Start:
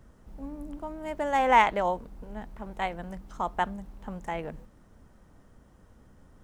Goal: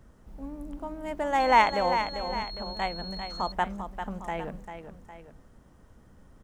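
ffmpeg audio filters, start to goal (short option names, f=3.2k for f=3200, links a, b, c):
-filter_complex "[0:a]aecho=1:1:396|806:0.376|0.188,asettb=1/sr,asplit=3[a][b][c];[a]atrim=end=1.404[d];[b]atrim=start=1.4:end=3.52,asetpts=PTS-STARTPTS,afade=t=in:d=0.004:c=qsin,afade=t=out:st=2.116:d=0.004:c=qsin,aeval=exprs='val(0)+0.0112*sin(2*PI*4300*n/s)':c=same[e];[c]atrim=start=3.516[f];[d][e]acrossfade=d=0.004:c1=hsin:c2=qsin[g];[g][f]acrossfade=d=0.004:c1=qsin:c2=hsin"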